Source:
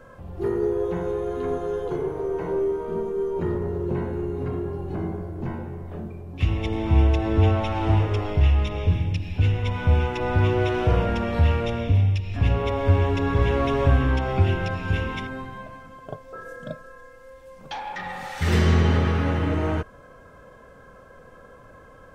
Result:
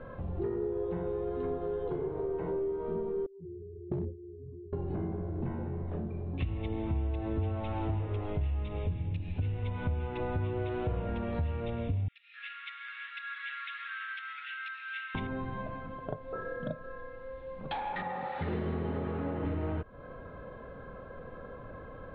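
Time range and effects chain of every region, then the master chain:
0:03.26–0:04.73: expanding power law on the bin magnitudes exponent 2.9 + noise gate with hold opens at −17 dBFS, closes at −24 dBFS + hard clipping −23 dBFS
0:12.08–0:15.15: Chebyshev high-pass with heavy ripple 1,300 Hz, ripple 3 dB + high-shelf EQ 4,900 Hz −10 dB
0:18.02–0:19.45: high-pass filter 780 Hz 6 dB per octave + tilt shelving filter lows +9.5 dB, about 1,100 Hz
whole clip: Chebyshev low-pass filter 4,000 Hz, order 5; tilt shelving filter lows +4 dB, about 1,400 Hz; downward compressor 4 to 1, threshold −33 dBFS

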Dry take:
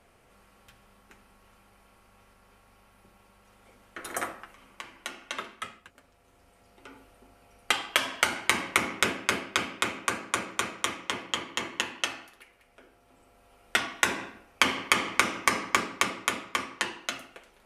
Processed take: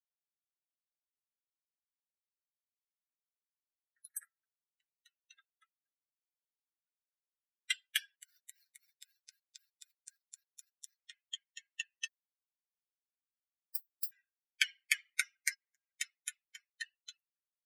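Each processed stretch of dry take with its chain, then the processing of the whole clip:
0:08.16–0:10.99: hold until the input has moved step −29.5 dBFS + parametric band 4,800 Hz +2 dB 1.2 octaves + downward compressor 12 to 1, threshold −29 dBFS
0:12.07–0:14.12: lower of the sound and its delayed copy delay 4 ms + sample-and-hold swept by an LFO 26× 3.4 Hz + first-order pre-emphasis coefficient 0.8
0:15.54–0:16.00: downward compressor 10 to 1, threshold −35 dBFS + notch comb filter 150 Hz
whole clip: spectral dynamics exaggerated over time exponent 3; Butterworth high-pass 1,500 Hz 96 dB per octave; high-shelf EQ 10,000 Hz +8 dB; level −3.5 dB

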